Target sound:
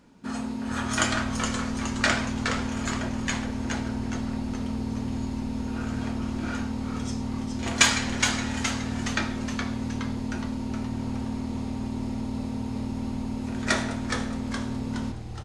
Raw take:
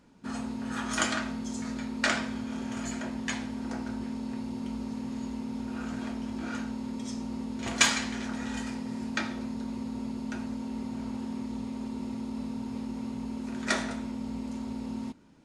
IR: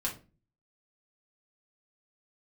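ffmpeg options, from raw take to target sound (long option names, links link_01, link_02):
-filter_complex "[0:a]asplit=8[link_01][link_02][link_03][link_04][link_05][link_06][link_07][link_08];[link_02]adelay=418,afreqshift=-140,volume=-5.5dB[link_09];[link_03]adelay=836,afreqshift=-280,volume=-10.9dB[link_10];[link_04]adelay=1254,afreqshift=-420,volume=-16.2dB[link_11];[link_05]adelay=1672,afreqshift=-560,volume=-21.6dB[link_12];[link_06]adelay=2090,afreqshift=-700,volume=-26.9dB[link_13];[link_07]adelay=2508,afreqshift=-840,volume=-32.3dB[link_14];[link_08]adelay=2926,afreqshift=-980,volume=-37.6dB[link_15];[link_01][link_09][link_10][link_11][link_12][link_13][link_14][link_15]amix=inputs=8:normalize=0,volume=3.5dB"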